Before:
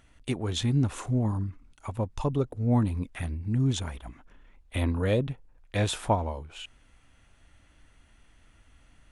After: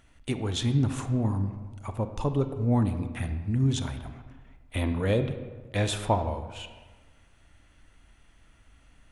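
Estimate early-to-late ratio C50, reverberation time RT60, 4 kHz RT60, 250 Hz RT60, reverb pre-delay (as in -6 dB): 9.5 dB, 1.4 s, 0.85 s, 1.5 s, 26 ms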